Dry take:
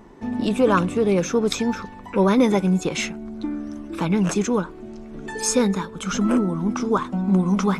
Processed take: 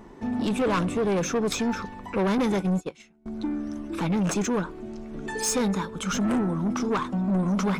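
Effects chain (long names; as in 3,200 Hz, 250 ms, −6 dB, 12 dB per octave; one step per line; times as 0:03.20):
0:02.38–0:03.26: noise gate −20 dBFS, range −28 dB
soft clipping −20.5 dBFS, distortion −10 dB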